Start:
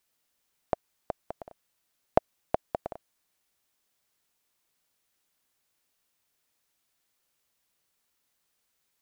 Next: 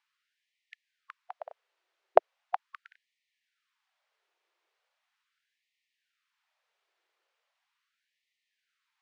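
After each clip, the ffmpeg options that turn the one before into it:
-af "lowpass=2.9k,afftfilt=real='re*gte(b*sr/1024,310*pow(1800/310,0.5+0.5*sin(2*PI*0.39*pts/sr)))':imag='im*gte(b*sr/1024,310*pow(1800/310,0.5+0.5*sin(2*PI*0.39*pts/sr)))':win_size=1024:overlap=0.75,volume=4dB"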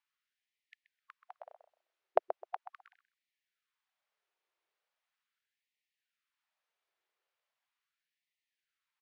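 -filter_complex "[0:a]asplit=2[a][b];[b]adelay=129,lowpass=f=1.3k:p=1,volume=-8.5dB,asplit=2[c][d];[d]adelay=129,lowpass=f=1.3k:p=1,volume=0.22,asplit=2[e][f];[f]adelay=129,lowpass=f=1.3k:p=1,volume=0.22[g];[a][c][e][g]amix=inputs=4:normalize=0,volume=-8.5dB"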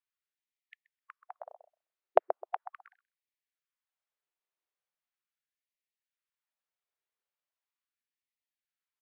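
-af "afftdn=nr=14:nf=-63,volume=5dB"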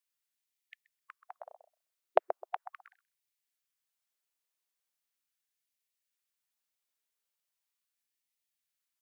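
-af "highshelf=f=2.7k:g=12,volume=-3dB"

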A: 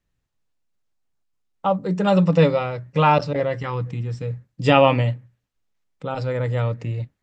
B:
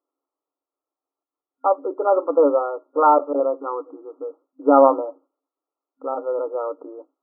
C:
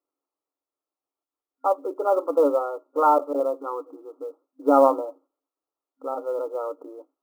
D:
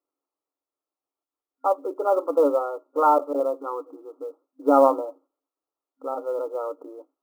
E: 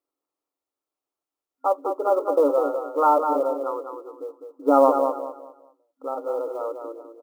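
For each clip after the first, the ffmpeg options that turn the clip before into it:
-af "afftfilt=real='re*between(b*sr/4096,260,1400)':imag='im*between(b*sr/4096,260,1400)':win_size=4096:overlap=0.75,volume=2.5dB"
-af "acrusher=bits=9:mode=log:mix=0:aa=0.000001,volume=-3.5dB"
-af anull
-af "aecho=1:1:203|406|609|812:0.473|0.137|0.0398|0.0115"

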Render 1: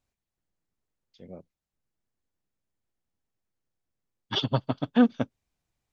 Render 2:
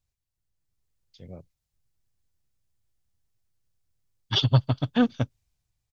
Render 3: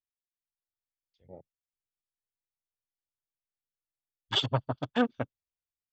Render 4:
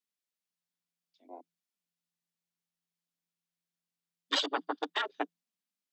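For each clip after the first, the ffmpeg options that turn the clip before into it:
-af "firequalizer=gain_entry='entry(120,0);entry(200,-13);entry(4600,-4)':delay=0.05:min_phase=1,dynaudnorm=f=160:g=9:m=7dB,volume=4dB"
-af "bass=f=250:g=-13,treble=f=4k:g=-9,afwtdn=0.00794"
-af "equalizer=f=4k:t=o:w=2.3:g=4.5,afftfilt=real='re*lt(hypot(re,im),0.251)':imag='im*lt(hypot(re,im),0.251)':win_size=1024:overlap=0.75,afreqshift=170"

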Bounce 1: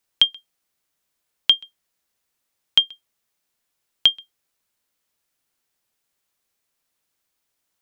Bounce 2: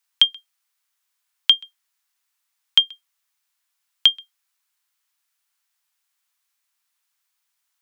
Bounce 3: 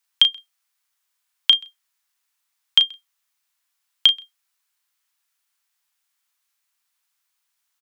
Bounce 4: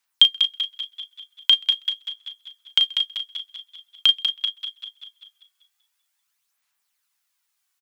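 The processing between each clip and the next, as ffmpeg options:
-af "highpass=f=900:w=0.5412,highpass=f=900:w=1.3066,volume=1dB"
-filter_complex "[0:a]asplit=2[a][b];[b]adelay=35,volume=-10dB[c];[a][c]amix=inputs=2:normalize=0"
-filter_complex "[0:a]asplit=2[a][b];[b]asplit=5[c][d][e][f][g];[c]adelay=192,afreqshift=52,volume=-8.5dB[h];[d]adelay=384,afreqshift=104,volume=-15.8dB[i];[e]adelay=576,afreqshift=156,volume=-23.2dB[j];[f]adelay=768,afreqshift=208,volume=-30.5dB[k];[g]adelay=960,afreqshift=260,volume=-37.8dB[l];[h][i][j][k][l]amix=inputs=5:normalize=0[m];[a][m]amix=inputs=2:normalize=0,aphaser=in_gain=1:out_gain=1:delay=2.7:decay=0.48:speed=0.45:type=sinusoidal,asplit=2[n][o];[o]aecho=0:1:196|392|588|784|980|1176:0.316|0.177|0.0992|0.0555|0.0311|0.0174[p];[n][p]amix=inputs=2:normalize=0,volume=-2dB"

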